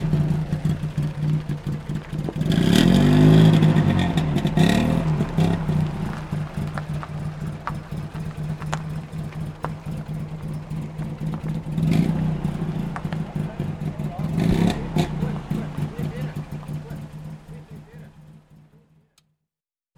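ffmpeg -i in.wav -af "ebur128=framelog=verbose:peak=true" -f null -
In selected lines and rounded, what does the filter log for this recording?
Integrated loudness:
  I:         -23.0 LUFS
  Threshold: -33.5 LUFS
Loudness range:
  LRA:        14.2 LU
  Threshold: -43.3 LUFS
  LRA low:   -31.9 LUFS
  LRA high:  -17.7 LUFS
True peak:
  Peak:       -1.2 dBFS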